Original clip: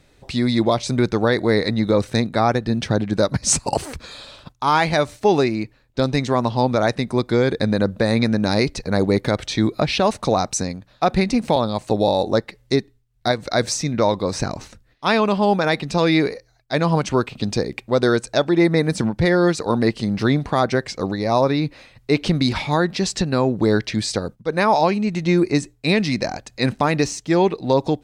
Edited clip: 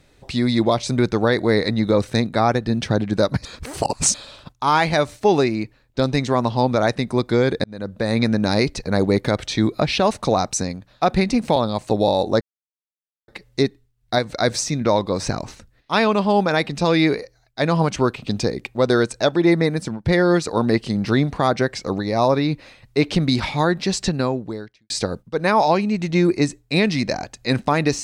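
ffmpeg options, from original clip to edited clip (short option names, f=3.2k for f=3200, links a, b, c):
-filter_complex "[0:a]asplit=7[a][b][c][d][e][f][g];[a]atrim=end=3.452[h];[b]atrim=start=3.448:end=4.142,asetpts=PTS-STARTPTS,areverse[i];[c]atrim=start=4.138:end=7.64,asetpts=PTS-STARTPTS,afade=t=out:st=3.498:d=0.004:c=hsin[j];[d]atrim=start=7.64:end=12.41,asetpts=PTS-STARTPTS,afade=t=in:d=0.6,afade=t=out:st=4.766:d=0.004:c=hsin,apad=pad_dur=0.87[k];[e]atrim=start=12.41:end=19.18,asetpts=PTS-STARTPTS,afade=t=in:d=0.004:c=hsin,afade=t=out:st=6.29:d=0.48:silence=0.237137[l];[f]atrim=start=19.18:end=24.03,asetpts=PTS-STARTPTS,afade=t=in:d=0.004:c=hsin:silence=0.237137,afade=t=out:st=4.11:d=0.74:c=qua[m];[g]atrim=start=24.03,asetpts=PTS-STARTPTS,afade=t=in:d=0.004:c=hsin[n];[h][i]acrossfade=d=0.004:c1=hsin:c2=hsin[o];[j][k][l][m][n]concat=n=5:v=0:a=1[p];[o][p]acrossfade=d=0.004:c1=hsin:c2=hsin"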